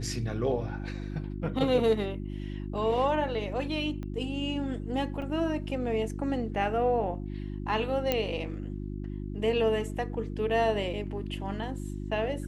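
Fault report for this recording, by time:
hum 50 Hz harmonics 7 -36 dBFS
4.03 s: pop -27 dBFS
5.22 s: dropout 3.6 ms
8.12 s: pop -12 dBFS

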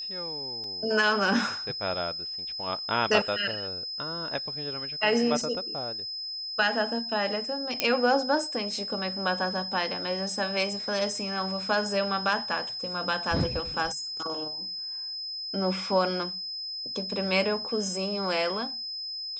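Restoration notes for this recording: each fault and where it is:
whine 5.1 kHz -33 dBFS
0.64 s: dropout 2.3 ms
7.80 s: pop -7 dBFS

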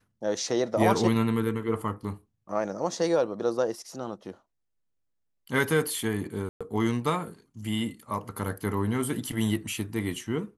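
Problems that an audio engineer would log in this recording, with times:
6.49–6.61 s: dropout 116 ms

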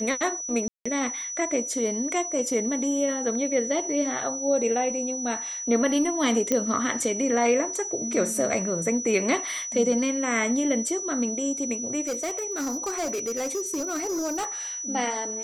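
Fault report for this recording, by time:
whine 5.9 kHz -31 dBFS
0.68–0.85 s: dropout 175 ms
6.52 s: pop -9 dBFS
12.07–14.47 s: clipped -25 dBFS

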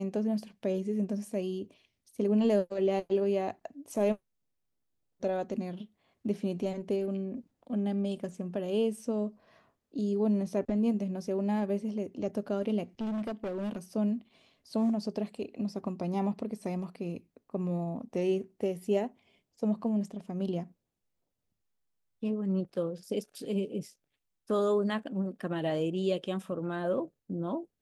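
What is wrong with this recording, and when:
13.01–13.78 s: clipped -31 dBFS

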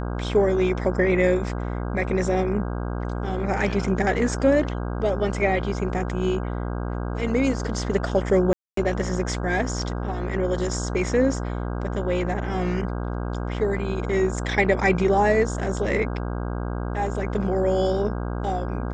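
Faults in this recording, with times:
buzz 60 Hz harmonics 27 -28 dBFS
8.53–8.77 s: dropout 243 ms

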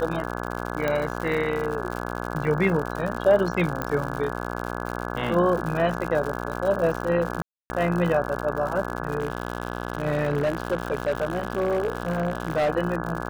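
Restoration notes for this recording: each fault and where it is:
buzz 60 Hz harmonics 28 -31 dBFS
crackle 110 per s -29 dBFS
0.88 s: pop -12 dBFS
3.82 s: pop -13 dBFS
7.42–7.70 s: dropout 280 ms
9.18–12.70 s: clipped -19 dBFS

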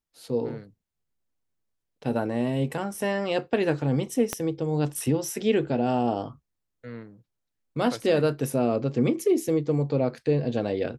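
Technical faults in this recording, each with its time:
4.33 s: pop -11 dBFS

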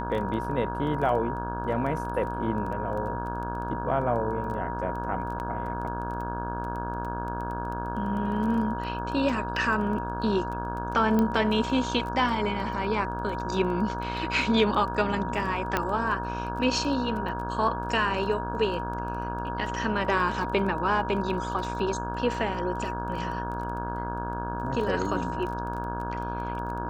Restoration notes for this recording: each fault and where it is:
buzz 60 Hz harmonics 28 -34 dBFS
crackle 12 per s -34 dBFS
whine 950 Hz -33 dBFS
5.39–5.40 s: dropout 9.6 ms
11.19 s: pop -14 dBFS
15.77 s: pop -10 dBFS

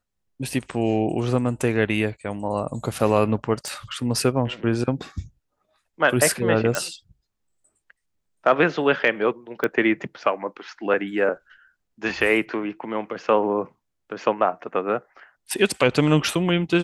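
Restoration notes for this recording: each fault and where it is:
3.68 s: pop -17 dBFS
6.75 s: pop
9.64 s: pop -11 dBFS

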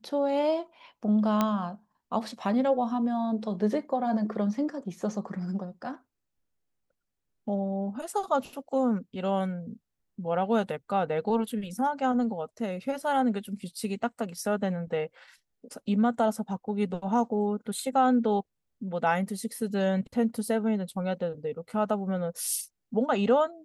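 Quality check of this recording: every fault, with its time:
1.41 s: pop -11 dBFS

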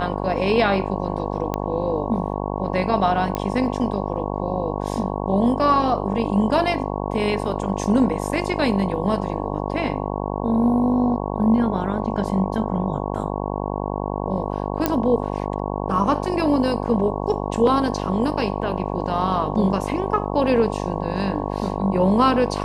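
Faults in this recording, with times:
buzz 50 Hz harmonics 22 -26 dBFS
1.54 s: pop -11 dBFS
3.35 s: pop -11 dBFS
14.86 s: pop -4 dBFS

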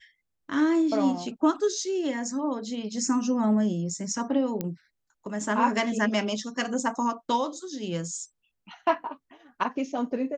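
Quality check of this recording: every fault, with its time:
4.61 s: pop -16 dBFS

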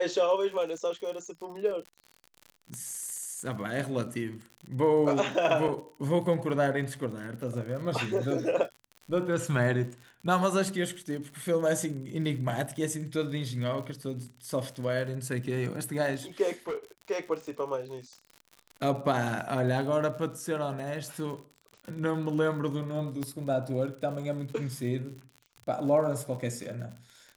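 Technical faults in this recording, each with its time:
crackle 66 per s -38 dBFS
2.74 s: pop -25 dBFS
5.68 s: dropout 4.2 ms
16.68–16.76 s: clipped -29.5 dBFS
23.23 s: pop -20 dBFS

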